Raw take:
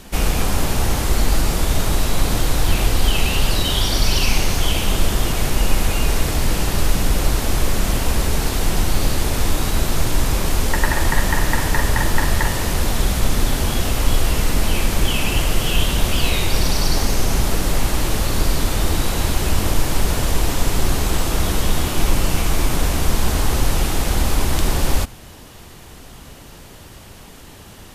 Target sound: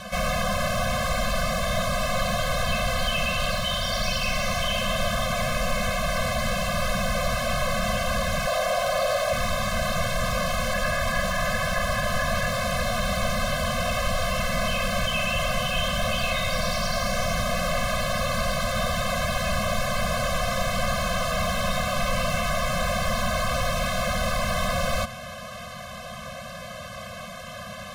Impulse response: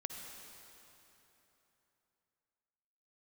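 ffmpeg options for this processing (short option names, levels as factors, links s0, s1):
-filter_complex "[0:a]asettb=1/sr,asplit=3[s0][s1][s2];[s0]atrim=end=8.474[s3];[s1]atrim=start=8.47:end=9.33,asetpts=PTS-STARTPTS,afade=t=in:d=0.004:c=qsin,afade=t=out:st=0.856:d=0.004:c=qsin,lowshelf=f=380:t=q:w=3:g=-14[s4];[s2]atrim=start=9.326[s5];[s3][s4]acrossfade=d=0.004:c1=hsin:c2=qsin[s6];[s6][s5]acrossfade=d=0.004:c1=qsin:c2=hsin,asplit=2[s7][s8];[s8]highpass=f=720:p=1,volume=35.5,asoftclip=type=tanh:threshold=0.841[s9];[s7][s9]amix=inputs=2:normalize=0,lowpass=f=1500:p=1,volume=0.501,afftfilt=real='re*eq(mod(floor(b*sr/1024/250),2),0)':imag='im*eq(mod(floor(b*sr/1024/250),2),0)':win_size=1024:overlap=0.75,volume=0.355"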